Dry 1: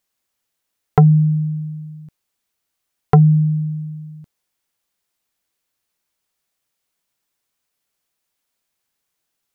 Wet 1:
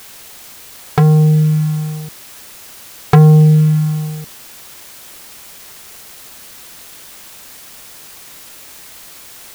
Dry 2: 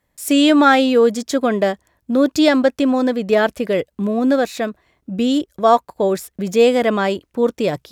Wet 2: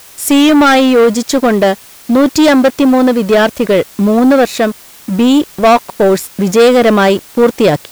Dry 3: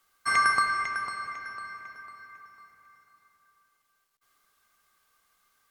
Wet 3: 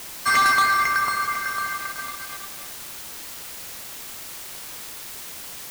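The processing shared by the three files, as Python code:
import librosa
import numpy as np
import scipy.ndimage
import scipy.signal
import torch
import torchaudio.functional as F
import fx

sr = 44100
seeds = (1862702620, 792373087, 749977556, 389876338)

y = fx.leveller(x, sr, passes=3)
y = fx.rider(y, sr, range_db=3, speed_s=2.0)
y = fx.quant_dither(y, sr, seeds[0], bits=6, dither='triangular')
y = F.gain(torch.from_numpy(y), -1.0).numpy()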